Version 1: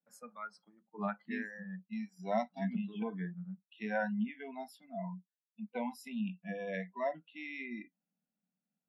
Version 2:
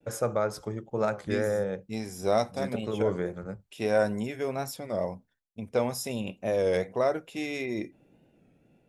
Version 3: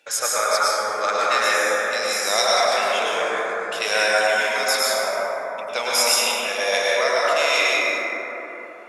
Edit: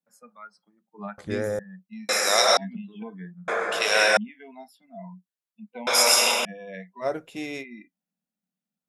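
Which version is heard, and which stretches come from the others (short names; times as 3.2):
1
1.18–1.59 from 2
2.09–2.57 from 3
3.48–4.17 from 3
5.87–6.45 from 3
7.04–7.62 from 2, crossfade 0.06 s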